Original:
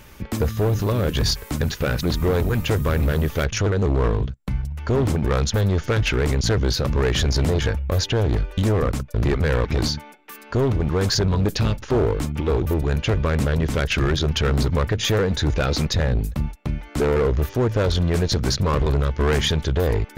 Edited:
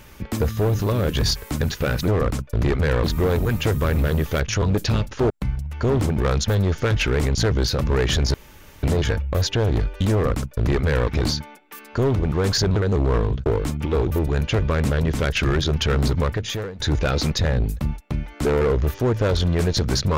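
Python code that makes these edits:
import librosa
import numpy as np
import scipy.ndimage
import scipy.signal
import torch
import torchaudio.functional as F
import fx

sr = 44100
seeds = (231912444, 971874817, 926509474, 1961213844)

y = fx.edit(x, sr, fx.swap(start_s=3.66, length_s=0.7, other_s=11.33, other_length_s=0.68),
    fx.insert_room_tone(at_s=7.4, length_s=0.49),
    fx.duplicate(start_s=8.69, length_s=0.96, to_s=2.08),
    fx.fade_out_to(start_s=14.73, length_s=0.62, floor_db=-21.0), tone=tone)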